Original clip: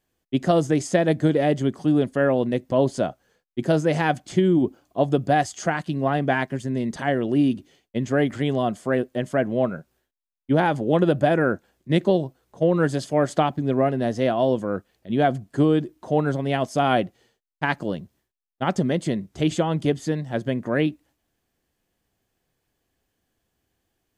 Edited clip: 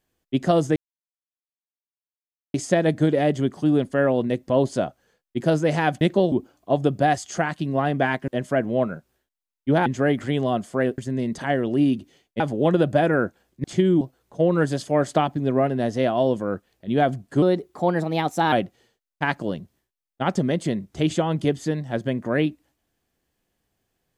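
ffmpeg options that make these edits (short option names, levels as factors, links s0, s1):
-filter_complex "[0:a]asplit=12[s0][s1][s2][s3][s4][s5][s6][s7][s8][s9][s10][s11];[s0]atrim=end=0.76,asetpts=PTS-STARTPTS,afade=t=out:st=0.756:d=0.004:c=hsin,apad=pad_dur=1.78[s12];[s1]atrim=start=0.76:end=4.232,asetpts=PTS-STARTPTS,afade=t=in:d=0.004:c=hsin[s13];[s2]atrim=start=11.918:end=12.232[s14];[s3]atrim=start=4.598:end=6.562[s15];[s4]atrim=start=9.098:end=10.682[s16];[s5]atrim=start=7.978:end=9.102[s17];[s6]atrim=start=6.558:end=7.982[s18];[s7]atrim=start=10.678:end=11.922[s19];[s8]atrim=start=4.228:end=4.602[s20];[s9]atrim=start=12.228:end=15.644[s21];[s10]atrim=start=15.64:end=16.93,asetpts=PTS-STARTPTS,asetrate=51597,aresample=44100,atrim=end_sample=48623,asetpts=PTS-STARTPTS[s22];[s11]atrim=start=16.926[s23];[s12][s13]concat=n=2:v=0:a=1[s24];[s24][s14]acrossfade=d=0.004:c1=hsin:c2=hsin[s25];[s25][s15]acrossfade=d=0.004:c1=hsin:c2=hsin[s26];[s26][s16]acrossfade=d=0.004:c1=hsin:c2=hsin[s27];[s27][s17]acrossfade=d=0.004:c1=hsin:c2=hsin[s28];[s28][s18]acrossfade=d=0.004:c1=hsin:c2=hsin[s29];[s29][s19]acrossfade=d=0.004:c1=hsin:c2=hsin[s30];[s30][s20]acrossfade=d=0.004:c1=hsin:c2=hsin[s31];[s31][s21]acrossfade=d=0.004:c1=hsin:c2=hsin[s32];[s32][s22]acrossfade=d=0.004:c1=hsin:c2=hsin[s33];[s33][s23]acrossfade=d=0.004:c1=hsin:c2=hsin"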